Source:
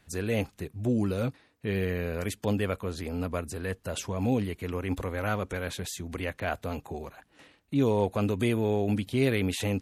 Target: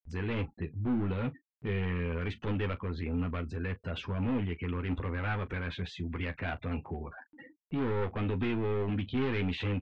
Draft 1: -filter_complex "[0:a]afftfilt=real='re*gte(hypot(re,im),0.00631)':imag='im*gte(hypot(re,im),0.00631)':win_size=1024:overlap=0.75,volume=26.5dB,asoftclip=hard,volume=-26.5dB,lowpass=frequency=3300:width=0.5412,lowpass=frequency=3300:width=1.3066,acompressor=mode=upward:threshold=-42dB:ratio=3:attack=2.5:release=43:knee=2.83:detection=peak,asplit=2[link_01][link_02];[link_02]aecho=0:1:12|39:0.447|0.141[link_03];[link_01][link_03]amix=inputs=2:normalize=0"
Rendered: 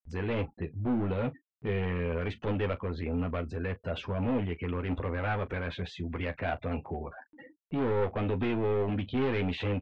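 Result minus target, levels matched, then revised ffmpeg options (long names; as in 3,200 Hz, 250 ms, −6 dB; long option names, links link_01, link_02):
500 Hz band +3.0 dB
-filter_complex "[0:a]afftfilt=real='re*gte(hypot(re,im),0.00631)':imag='im*gte(hypot(re,im),0.00631)':win_size=1024:overlap=0.75,volume=26.5dB,asoftclip=hard,volume=-26.5dB,lowpass=frequency=3300:width=0.5412,lowpass=frequency=3300:width=1.3066,equalizer=frequency=610:width_type=o:width=0.96:gain=-8.5,acompressor=mode=upward:threshold=-42dB:ratio=3:attack=2.5:release=43:knee=2.83:detection=peak,asplit=2[link_01][link_02];[link_02]aecho=0:1:12|39:0.447|0.141[link_03];[link_01][link_03]amix=inputs=2:normalize=0"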